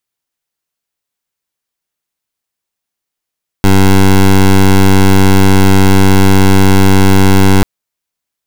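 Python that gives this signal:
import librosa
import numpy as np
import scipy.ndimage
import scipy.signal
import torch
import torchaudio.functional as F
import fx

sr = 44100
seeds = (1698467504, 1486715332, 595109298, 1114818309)

y = fx.pulse(sr, length_s=3.99, hz=96.5, level_db=-5.0, duty_pct=16)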